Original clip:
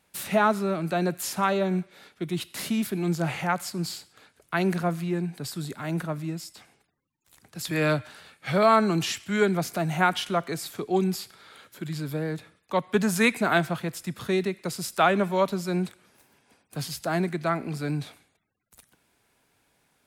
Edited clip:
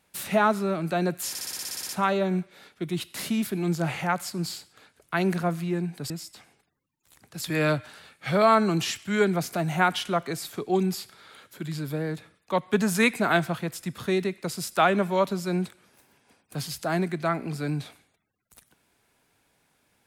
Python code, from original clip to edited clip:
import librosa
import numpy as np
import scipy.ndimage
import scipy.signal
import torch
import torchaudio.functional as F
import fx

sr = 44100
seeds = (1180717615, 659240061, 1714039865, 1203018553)

y = fx.edit(x, sr, fx.stutter(start_s=1.29, slice_s=0.06, count=11),
    fx.cut(start_s=5.5, length_s=0.81), tone=tone)